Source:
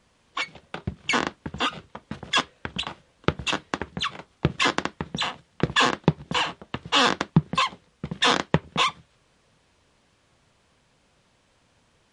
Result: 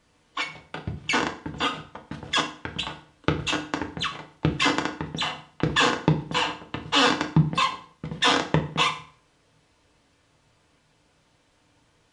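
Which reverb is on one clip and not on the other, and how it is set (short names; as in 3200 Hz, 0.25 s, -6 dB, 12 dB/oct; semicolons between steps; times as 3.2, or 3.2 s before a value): FDN reverb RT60 0.47 s, low-frequency decay 1.1×, high-frequency decay 0.85×, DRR 2.5 dB; gain -2 dB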